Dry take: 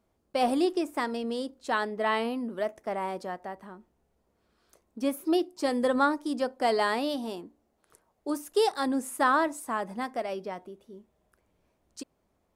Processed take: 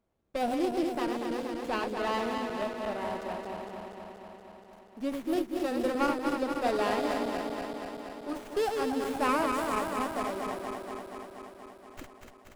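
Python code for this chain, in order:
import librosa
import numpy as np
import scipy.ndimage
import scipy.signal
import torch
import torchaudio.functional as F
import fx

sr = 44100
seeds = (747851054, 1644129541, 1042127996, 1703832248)

y = fx.reverse_delay_fb(x, sr, ms=119, feedback_pct=85, wet_db=-5)
y = fx.high_shelf(y, sr, hz=5000.0, db=fx.steps((0.0, 4.0), (9.55, 9.0)))
y = fx.running_max(y, sr, window=9)
y = y * 10.0 ** (-5.0 / 20.0)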